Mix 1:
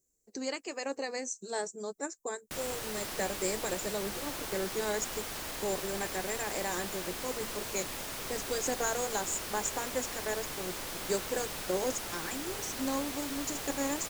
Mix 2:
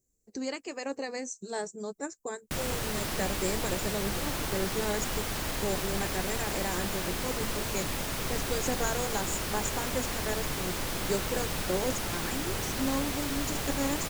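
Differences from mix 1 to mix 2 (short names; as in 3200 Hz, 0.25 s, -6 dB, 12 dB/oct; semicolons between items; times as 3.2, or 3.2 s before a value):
background +5.5 dB; master: add tone controls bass +8 dB, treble -2 dB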